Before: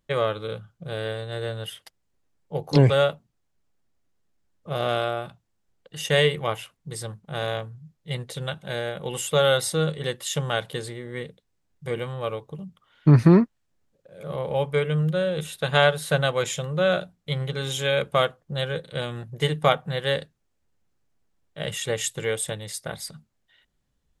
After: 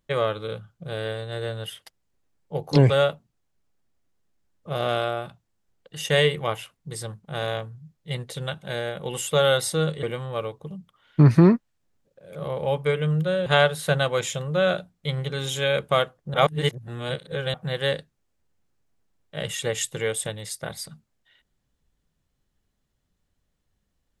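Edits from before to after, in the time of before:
10.03–11.91 s: delete
15.34–15.69 s: delete
18.57–19.77 s: reverse

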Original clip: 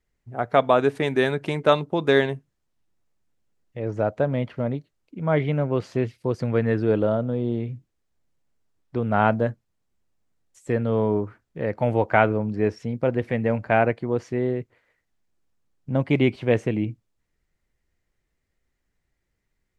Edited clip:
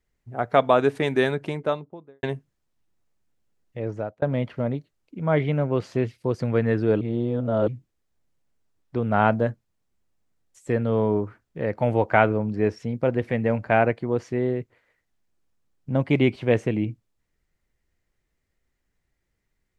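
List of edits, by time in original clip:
1.15–2.23 s: studio fade out
3.81–4.22 s: fade out
7.01–7.68 s: reverse

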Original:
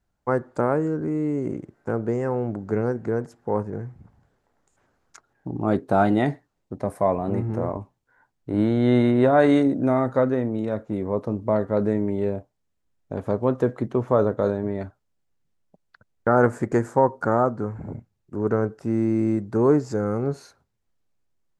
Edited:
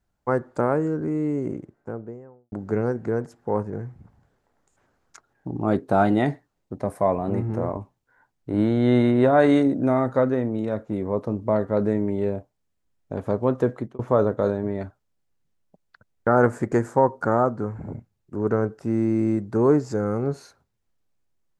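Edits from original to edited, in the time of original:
1.26–2.52 s: studio fade out
13.74–13.99 s: fade out

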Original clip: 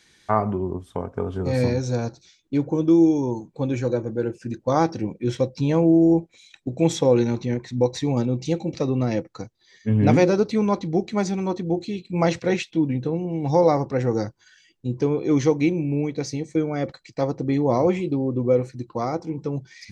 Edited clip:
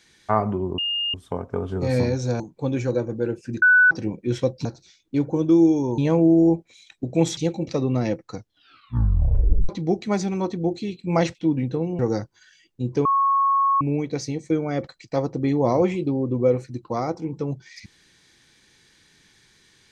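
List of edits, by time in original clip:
0.78 s: add tone 2.83 kHz -22 dBFS 0.36 s
2.04–3.37 s: move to 5.62 s
4.59–4.88 s: bleep 1.49 kHz -11 dBFS
7.01–8.43 s: delete
9.41 s: tape stop 1.34 s
12.41–12.67 s: delete
13.31–14.04 s: delete
15.10–15.86 s: bleep 1.1 kHz -16 dBFS

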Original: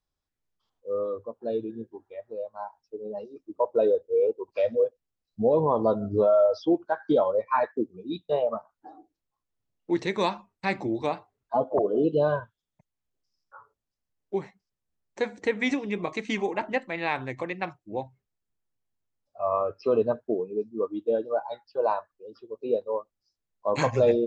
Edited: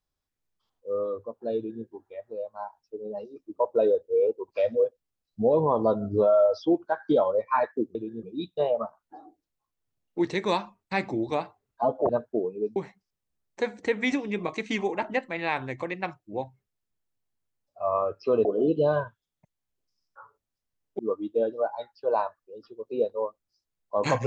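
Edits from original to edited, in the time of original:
1.57–1.85 s: copy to 7.95 s
11.81–14.35 s: swap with 20.04–20.71 s

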